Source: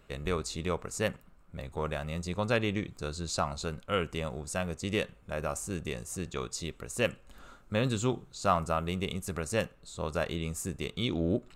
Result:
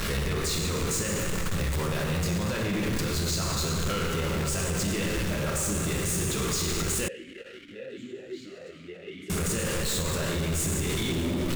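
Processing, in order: zero-crossing step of -30.5 dBFS; compressor, threshold -28 dBFS, peak gain reduction 9 dB; plate-style reverb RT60 2.5 s, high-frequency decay 0.75×, DRR -2.5 dB; limiter -22.5 dBFS, peak gain reduction 9 dB; bell 710 Hz -8 dB 1.1 oct; sample leveller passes 2; 7.08–9.3 vowel sweep e-i 2.6 Hz

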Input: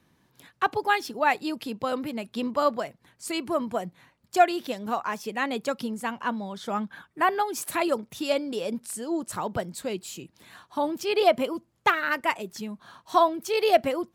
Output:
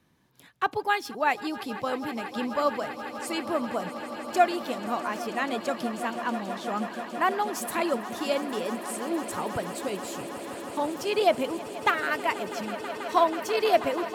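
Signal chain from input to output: swelling echo 0.162 s, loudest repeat 8, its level -17 dB; gain -2 dB

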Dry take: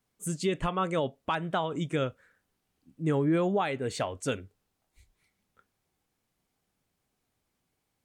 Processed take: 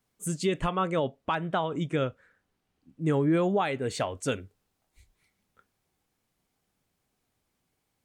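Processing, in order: 0.82–3.02 high shelf 5900 Hz -9.5 dB; gain +1.5 dB

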